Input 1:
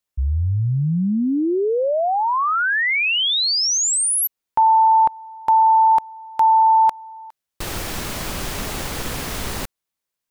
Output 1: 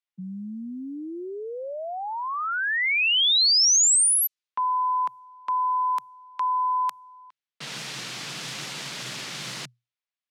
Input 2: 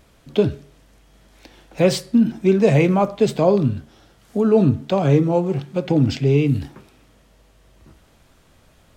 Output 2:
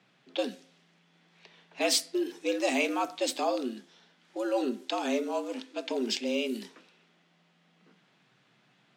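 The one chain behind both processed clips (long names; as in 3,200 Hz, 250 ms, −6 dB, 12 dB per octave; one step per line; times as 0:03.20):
low-pass that shuts in the quiet parts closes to 2,500 Hz, open at −14.5 dBFS
tilt shelving filter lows −9 dB, about 1,500 Hz
frequency shifter +120 Hz
level −6.5 dB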